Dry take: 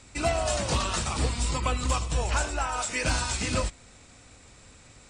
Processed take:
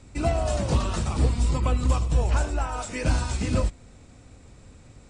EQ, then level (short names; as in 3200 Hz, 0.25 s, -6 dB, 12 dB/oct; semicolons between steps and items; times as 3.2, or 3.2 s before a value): tilt shelf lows +6.5 dB, about 710 Hz; 0.0 dB